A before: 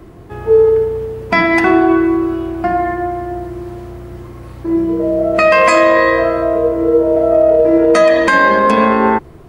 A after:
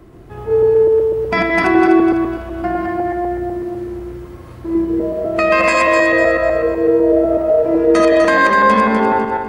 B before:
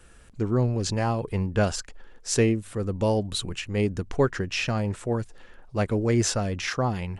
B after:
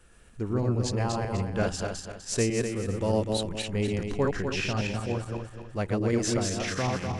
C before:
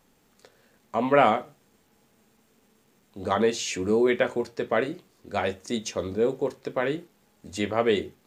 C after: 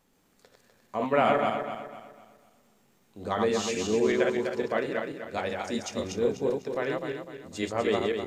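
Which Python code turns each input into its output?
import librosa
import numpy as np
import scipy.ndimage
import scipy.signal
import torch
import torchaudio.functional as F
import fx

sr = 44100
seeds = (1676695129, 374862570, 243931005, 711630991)

y = fx.reverse_delay_fb(x, sr, ms=125, feedback_pct=60, wet_db=-2.0)
y = F.gain(torch.from_numpy(y), -5.0).numpy()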